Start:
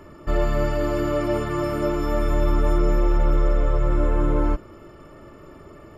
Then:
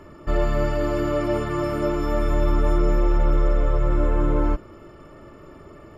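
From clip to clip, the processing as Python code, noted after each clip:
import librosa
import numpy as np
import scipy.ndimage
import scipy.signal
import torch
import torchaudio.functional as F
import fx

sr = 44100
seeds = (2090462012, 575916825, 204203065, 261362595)

y = fx.high_shelf(x, sr, hz=10000.0, db=-6.0)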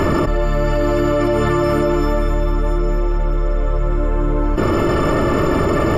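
y = fx.env_flatten(x, sr, amount_pct=100)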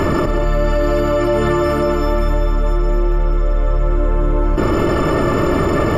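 y = x + 10.0 ** (-9.0 / 20.0) * np.pad(x, (int(188 * sr / 1000.0), 0))[:len(x)]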